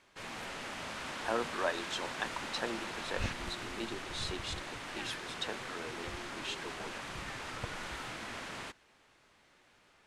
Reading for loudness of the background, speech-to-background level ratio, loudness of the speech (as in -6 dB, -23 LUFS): -41.0 LUFS, 0.5 dB, -40.5 LUFS